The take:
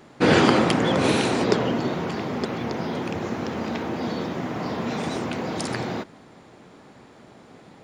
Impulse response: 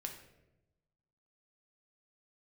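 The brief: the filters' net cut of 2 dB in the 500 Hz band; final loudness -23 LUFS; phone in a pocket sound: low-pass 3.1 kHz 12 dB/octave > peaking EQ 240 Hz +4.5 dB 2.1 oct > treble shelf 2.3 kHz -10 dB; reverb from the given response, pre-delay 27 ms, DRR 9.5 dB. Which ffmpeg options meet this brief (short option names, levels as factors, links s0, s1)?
-filter_complex "[0:a]equalizer=f=500:t=o:g=-5.5,asplit=2[s0][s1];[1:a]atrim=start_sample=2205,adelay=27[s2];[s1][s2]afir=irnorm=-1:irlink=0,volume=0.422[s3];[s0][s3]amix=inputs=2:normalize=0,lowpass=3100,equalizer=f=240:t=o:w=2.1:g=4.5,highshelf=f=2300:g=-10,volume=1.06"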